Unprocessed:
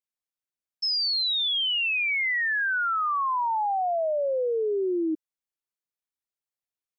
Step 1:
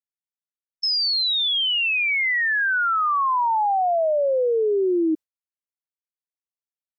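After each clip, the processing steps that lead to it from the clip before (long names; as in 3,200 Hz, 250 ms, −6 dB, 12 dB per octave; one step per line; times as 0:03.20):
noise gate with hold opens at −23 dBFS
in parallel at −3 dB: speech leveller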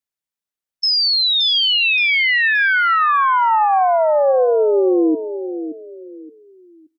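repeating echo 573 ms, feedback 30%, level −10.5 dB
on a send at −21.5 dB: convolution reverb RT60 0.70 s, pre-delay 3 ms
on the sum: level +5.5 dB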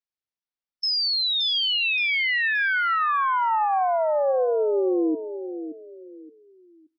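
level −7 dB
MP3 24 kbit/s 24,000 Hz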